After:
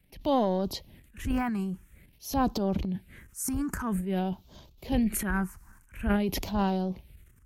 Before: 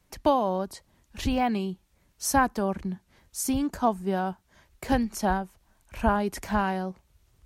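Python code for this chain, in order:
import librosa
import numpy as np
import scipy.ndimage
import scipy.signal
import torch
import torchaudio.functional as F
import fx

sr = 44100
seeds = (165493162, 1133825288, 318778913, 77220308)

y = fx.phaser_stages(x, sr, stages=4, low_hz=560.0, high_hz=1800.0, hz=0.49, feedback_pct=30)
y = fx.transient(y, sr, attack_db=-6, sustain_db=11)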